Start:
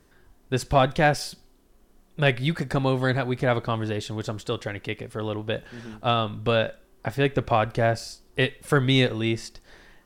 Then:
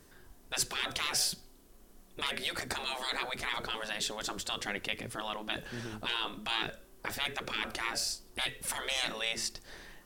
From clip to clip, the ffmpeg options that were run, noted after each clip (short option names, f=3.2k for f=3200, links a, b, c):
-af "afftfilt=real='re*lt(hypot(re,im),0.1)':imag='im*lt(hypot(re,im),0.1)':win_size=1024:overlap=0.75,highshelf=f=4.7k:g=7.5,bandreject=f=50:t=h:w=6,bandreject=f=100:t=h:w=6"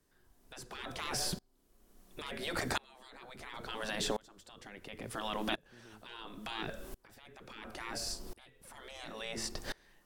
-filter_complex "[0:a]acrossover=split=310|1400[a][b][c];[a]acompressor=threshold=-49dB:ratio=4[d];[b]acompressor=threshold=-46dB:ratio=4[e];[c]acompressor=threshold=-47dB:ratio=4[f];[d][e][f]amix=inputs=3:normalize=0,alimiter=level_in=9.5dB:limit=-24dB:level=0:latency=1:release=18,volume=-9.5dB,aeval=exprs='val(0)*pow(10,-30*if(lt(mod(-0.72*n/s,1),2*abs(-0.72)/1000),1-mod(-0.72*n/s,1)/(2*abs(-0.72)/1000),(mod(-0.72*n/s,1)-2*abs(-0.72)/1000)/(1-2*abs(-0.72)/1000))/20)':c=same,volume=13.5dB"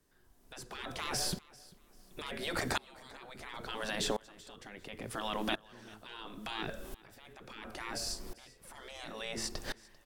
-af "aecho=1:1:393|786:0.075|0.0232,volume=1dB"